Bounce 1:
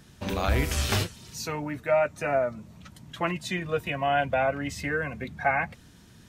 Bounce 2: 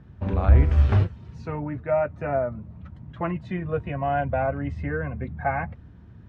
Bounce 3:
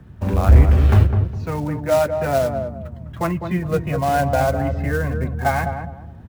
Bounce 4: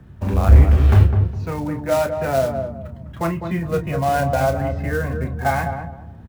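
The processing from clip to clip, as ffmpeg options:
-af "lowpass=1400,equalizer=f=77:t=o:w=1.7:g=12"
-filter_complex "[0:a]acrossover=split=160|460[s0][s1][s2];[s2]acrusher=bits=3:mode=log:mix=0:aa=0.000001[s3];[s0][s1][s3]amix=inputs=3:normalize=0,asoftclip=type=hard:threshold=0.316,asplit=2[s4][s5];[s5]adelay=205,lowpass=f=860:p=1,volume=0.562,asplit=2[s6][s7];[s7]adelay=205,lowpass=f=860:p=1,volume=0.31,asplit=2[s8][s9];[s9]adelay=205,lowpass=f=860:p=1,volume=0.31,asplit=2[s10][s11];[s11]adelay=205,lowpass=f=860:p=1,volume=0.31[s12];[s4][s6][s8][s10][s12]amix=inputs=5:normalize=0,volume=1.88"
-filter_complex "[0:a]asplit=2[s0][s1];[s1]adelay=30,volume=0.376[s2];[s0][s2]amix=inputs=2:normalize=0,volume=0.891"

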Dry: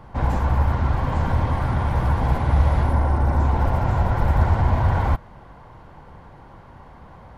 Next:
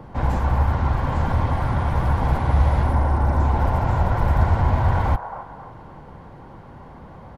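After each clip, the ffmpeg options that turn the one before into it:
-filter_complex "[0:a]acrossover=split=110|550|1400[s0][s1][s2][s3];[s1]acompressor=mode=upward:threshold=0.0141:ratio=2.5[s4];[s2]aecho=1:1:271|542|813|1084|1355:0.708|0.276|0.108|0.042|0.0164[s5];[s0][s4][s5][s3]amix=inputs=4:normalize=0"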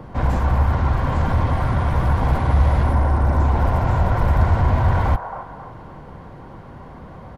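-filter_complex "[0:a]bandreject=f=850:w=13,asplit=2[s0][s1];[s1]asoftclip=type=tanh:threshold=0.106,volume=0.447[s2];[s0][s2]amix=inputs=2:normalize=0"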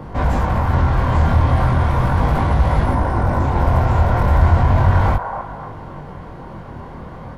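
-filter_complex "[0:a]asplit=2[s0][s1];[s1]alimiter=limit=0.178:level=0:latency=1,volume=1[s2];[s0][s2]amix=inputs=2:normalize=0,flanger=delay=19.5:depth=5.5:speed=0.36,volume=1.26"

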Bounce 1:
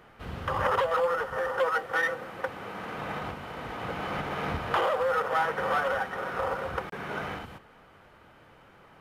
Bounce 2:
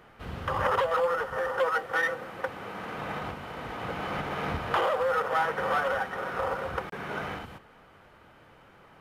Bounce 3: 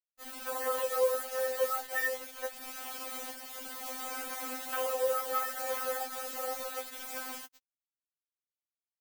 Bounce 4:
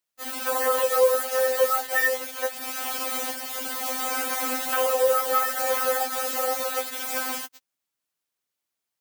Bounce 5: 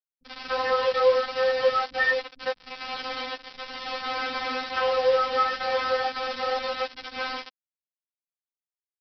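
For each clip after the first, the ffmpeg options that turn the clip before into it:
-af anull
-af "acrusher=bits=5:mix=0:aa=0.000001,aemphasis=mode=production:type=50kf,afftfilt=real='re*3.46*eq(mod(b,12),0)':imag='im*3.46*eq(mod(b,12),0)':win_size=2048:overlap=0.75,volume=0.398"
-filter_complex "[0:a]asplit=2[s0][s1];[s1]alimiter=level_in=1.5:limit=0.0631:level=0:latency=1:release=399,volume=0.668,volume=0.794[s2];[s0][s2]amix=inputs=2:normalize=0,highpass=f=100:p=1,volume=2.11"
-filter_complex "[0:a]aresample=11025,acrusher=bits=4:mix=0:aa=0.5,aresample=44100,acrossover=split=240[s0][s1];[s1]adelay=40[s2];[s0][s2]amix=inputs=2:normalize=0"

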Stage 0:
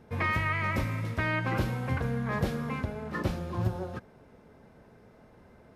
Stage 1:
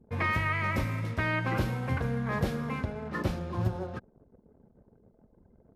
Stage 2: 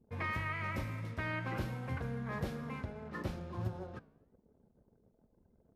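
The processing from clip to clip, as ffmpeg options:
-af "anlmdn=0.00398"
-af "flanger=delay=7.9:depth=9.1:regen=-88:speed=1.1:shape=triangular,volume=0.631"

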